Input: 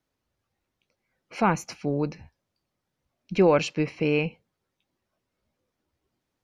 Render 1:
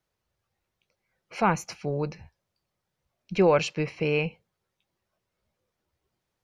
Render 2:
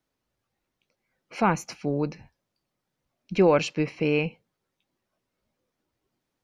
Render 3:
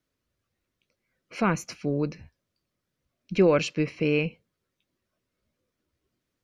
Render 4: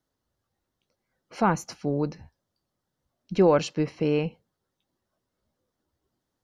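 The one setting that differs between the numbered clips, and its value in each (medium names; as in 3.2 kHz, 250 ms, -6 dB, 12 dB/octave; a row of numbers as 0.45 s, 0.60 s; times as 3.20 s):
peaking EQ, frequency: 270 Hz, 78 Hz, 830 Hz, 2.4 kHz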